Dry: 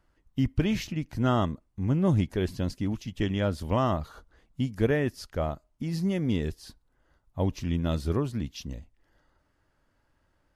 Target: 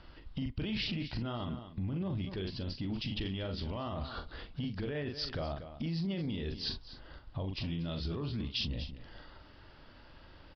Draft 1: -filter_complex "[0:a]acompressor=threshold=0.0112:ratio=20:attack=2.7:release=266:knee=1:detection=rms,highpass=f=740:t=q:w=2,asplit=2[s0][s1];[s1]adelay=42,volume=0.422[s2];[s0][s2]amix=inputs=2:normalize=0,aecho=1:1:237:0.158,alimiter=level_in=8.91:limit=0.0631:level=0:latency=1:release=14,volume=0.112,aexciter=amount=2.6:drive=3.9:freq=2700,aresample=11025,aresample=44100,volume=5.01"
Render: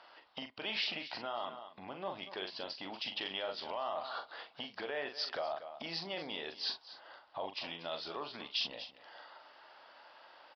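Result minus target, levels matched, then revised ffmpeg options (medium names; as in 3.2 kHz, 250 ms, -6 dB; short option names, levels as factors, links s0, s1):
1 kHz band +7.5 dB
-filter_complex "[0:a]acompressor=threshold=0.0112:ratio=20:attack=2.7:release=266:knee=1:detection=rms,asplit=2[s0][s1];[s1]adelay=42,volume=0.422[s2];[s0][s2]amix=inputs=2:normalize=0,aecho=1:1:237:0.158,alimiter=level_in=8.91:limit=0.0631:level=0:latency=1:release=14,volume=0.112,aexciter=amount=2.6:drive=3.9:freq=2700,aresample=11025,aresample=44100,volume=5.01"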